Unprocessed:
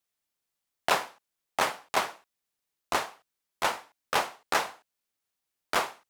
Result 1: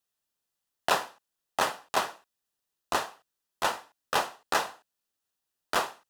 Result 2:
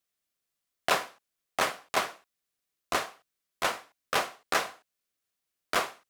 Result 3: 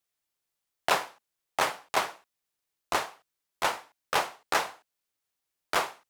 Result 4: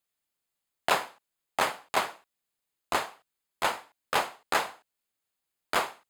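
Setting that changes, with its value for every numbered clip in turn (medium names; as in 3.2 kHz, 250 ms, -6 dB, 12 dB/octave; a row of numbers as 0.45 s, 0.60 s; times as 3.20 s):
band-stop, frequency: 2.2 kHz, 880 Hz, 230 Hz, 5.7 kHz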